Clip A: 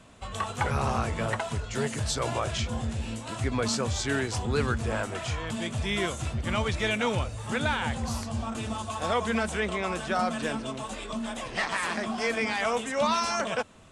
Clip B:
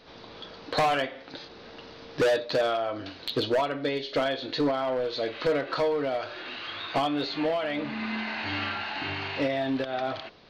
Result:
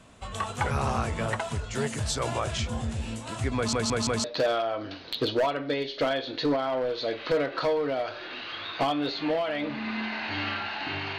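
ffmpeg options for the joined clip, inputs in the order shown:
-filter_complex "[0:a]apad=whole_dur=11.18,atrim=end=11.18,asplit=4[a][b][c][d];[a]atrim=end=3.732[e];[b]atrim=start=3.558:end=3.732[f];[c]atrim=start=3.558:end=3.732[g];[d]atrim=start=3.558:end=3.732[h];[1:a]atrim=start=2.388:end=9.33[i];[e][f]acrossfade=d=0.004:c1=hsin:c2=hsin[j];[j][g]acrossfade=d=0.004:c1=hsin:c2=hsin[k];[k][h]acrossfade=d=0.004:c1=hsin:c2=hsin[l];[l][i]acrossfade=d=0.004:c1=hsin:c2=hsin"

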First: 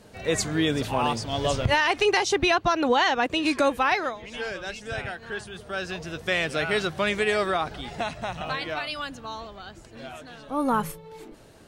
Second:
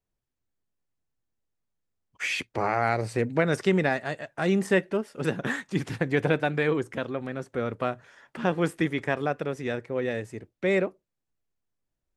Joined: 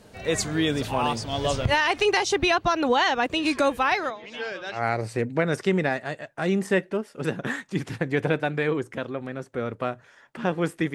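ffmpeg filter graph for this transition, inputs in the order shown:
-filter_complex "[0:a]asettb=1/sr,asplit=3[a][b][c];[a]atrim=end=4.104[d];[b]atrim=start=4.1:end=4.84,asetpts=PTS-STARTPTS,afade=t=in:d=0.004:c=qsin,afade=t=out:st=0.736:d=0.004:c=qsin,acrossover=split=170 6400:gain=0.0794 1 0.0708[e][f][g];[e][f][g]amix=inputs=3:normalize=0[h];[c]atrim=start=4.836[i];[d][h]acrossfade=d=0.004:c1=hsin:c2=qsin[j];[j][i]acrossfade=d=0.004:c1=qsin:c2=hsin,apad=whole_dur=10.94,atrim=end=10.94,atrim=end=4.84,asetpts=PTS-STARTPTS[k];[1:a]atrim=start=2.7:end=8.94,asetpts=PTS-STARTPTS[l];[k][l]acrossfade=d=0.14:c1=tri:c2=tri"

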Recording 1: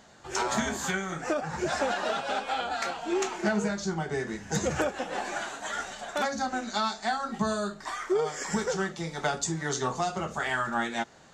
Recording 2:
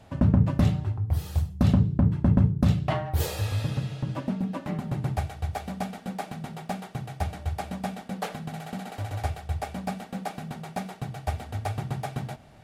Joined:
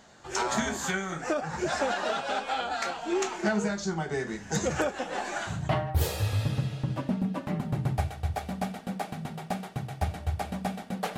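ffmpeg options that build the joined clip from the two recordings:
-filter_complex "[0:a]apad=whole_dur=11.17,atrim=end=11.17,atrim=end=5.72,asetpts=PTS-STARTPTS[a];[1:a]atrim=start=2.65:end=8.36,asetpts=PTS-STARTPTS[b];[a][b]acrossfade=d=0.26:c1=tri:c2=tri"

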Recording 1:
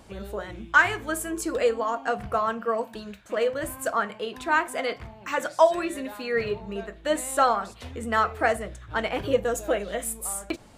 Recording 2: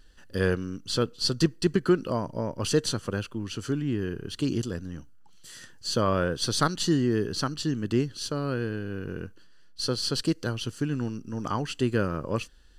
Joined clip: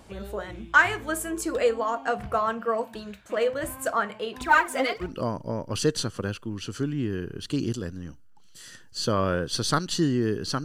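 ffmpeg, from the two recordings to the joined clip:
-filter_complex "[0:a]asettb=1/sr,asplit=3[a][b][c];[a]atrim=end=4.414[d];[b]atrim=start=4.41:end=5.17,asetpts=PTS-STARTPTS,afade=t=in:d=0.004:c=qsin,afade=t=out:st=0.756:d=0.004:c=qsin,aphaser=in_gain=1:out_gain=1:delay=4:decay=0.71:speed=1.3:type=triangular[e];[c]atrim=start=5.166[f];[d][e]acrossfade=d=0.004:c1=hsin:c2=qsin[g];[g][f]acrossfade=d=0.004:c1=qsin:c2=hsin,apad=whole_dur=10.64,atrim=end=10.64,atrim=end=5.17,asetpts=PTS-STARTPTS[h];[1:a]atrim=start=1.88:end=7.53,asetpts=PTS-STARTPTS[i];[h][i]acrossfade=d=0.18:c1=tri:c2=tri"

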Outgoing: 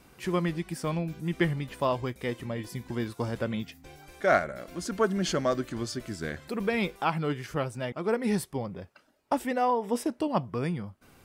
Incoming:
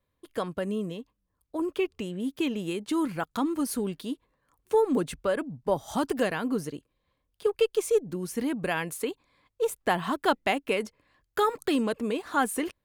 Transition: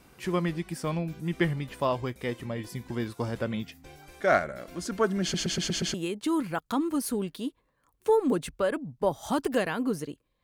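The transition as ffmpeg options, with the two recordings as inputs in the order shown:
-filter_complex "[0:a]apad=whole_dur=10.43,atrim=end=10.43,asplit=6[a][b][c][d][e][f];[a]atrim=end=5.342[g];[b]atrim=start=5.218:end=5.342[h];[c]atrim=start=5.218:end=5.342[i];[d]atrim=start=5.218:end=5.342[j];[e]atrim=start=5.218:end=5.342[k];[f]atrim=start=5.218:end=5.342[l];[1:a]atrim=start=2.588:end=7.08[m];[g][h]acrossfade=d=0.004:c1=hsin:c2=hsin[n];[n][i]acrossfade=d=0.004:c1=hsin:c2=hsin[o];[o][j]acrossfade=d=0.004:c1=hsin:c2=hsin[p];[p][k]acrossfade=d=0.004:c1=hsin:c2=hsin[q];[q][l]acrossfade=d=0.004:c1=hsin:c2=hsin[r];[r][m]acrossfade=d=0.004:c1=hsin:c2=hsin"

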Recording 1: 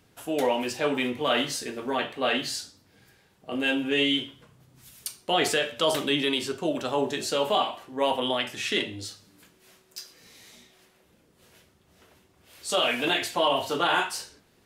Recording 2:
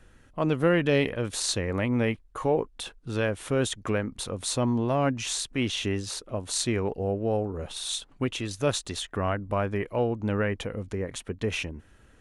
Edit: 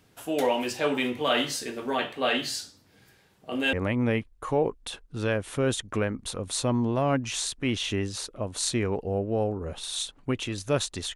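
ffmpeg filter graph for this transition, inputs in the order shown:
-filter_complex "[0:a]apad=whole_dur=11.15,atrim=end=11.15,atrim=end=3.732[a];[1:a]atrim=start=1.658:end=9.08[b];[a][b]acrossfade=d=0.004:c1=hsin:c2=hsin"

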